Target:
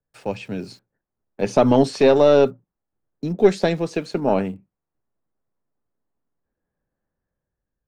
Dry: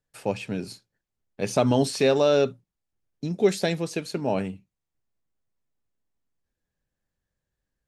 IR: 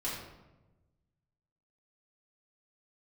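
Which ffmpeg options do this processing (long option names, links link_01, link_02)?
-filter_complex "[0:a]lowpass=6500,acrossover=split=170|1700[link_01][link_02][link_03];[link_02]dynaudnorm=framelen=170:gausssize=9:maxgain=7dB[link_04];[link_03]aeval=exprs='val(0)*gte(abs(val(0)),0.00126)':channel_layout=same[link_05];[link_01][link_04][link_05]amix=inputs=3:normalize=0,aeval=exprs='0.708*(cos(1*acos(clip(val(0)/0.708,-1,1)))-cos(1*PI/2))+0.0447*(cos(4*acos(clip(val(0)/0.708,-1,1)))-cos(4*PI/2))':channel_layout=same"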